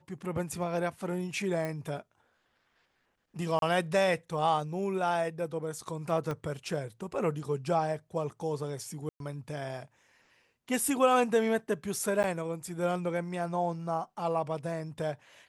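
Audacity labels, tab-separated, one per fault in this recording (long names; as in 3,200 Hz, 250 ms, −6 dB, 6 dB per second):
1.650000	1.650000	click −22 dBFS
3.590000	3.620000	drop-out 32 ms
6.310000	6.310000	click −22 dBFS
9.090000	9.200000	drop-out 112 ms
12.230000	12.240000	drop-out 9.5 ms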